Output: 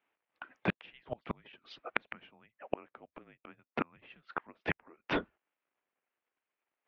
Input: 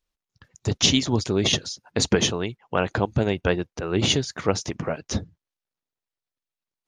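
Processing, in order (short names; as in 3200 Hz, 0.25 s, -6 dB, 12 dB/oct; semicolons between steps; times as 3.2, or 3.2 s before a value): mistuned SSB -240 Hz 560–2900 Hz; flipped gate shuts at -27 dBFS, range -37 dB; gain +9.5 dB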